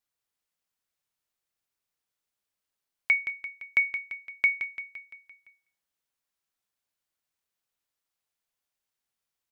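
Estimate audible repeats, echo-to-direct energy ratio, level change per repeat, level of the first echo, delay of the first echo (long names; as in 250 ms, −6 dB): 5, −8.5 dB, −5.0 dB, −10.0 dB, 171 ms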